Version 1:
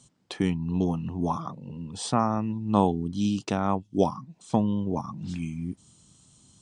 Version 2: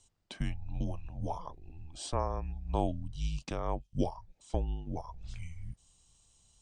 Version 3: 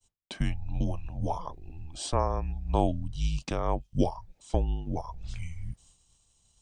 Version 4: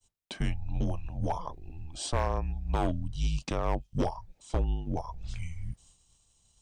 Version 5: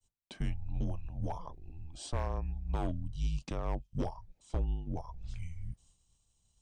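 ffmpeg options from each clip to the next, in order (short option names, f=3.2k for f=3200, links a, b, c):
-af "afreqshift=-150,volume=-8dB"
-af "agate=range=-33dB:threshold=-59dB:ratio=3:detection=peak,volume=5.5dB"
-af "asoftclip=type=hard:threshold=-21.5dB"
-af "lowshelf=f=300:g=5.5,volume=-9dB"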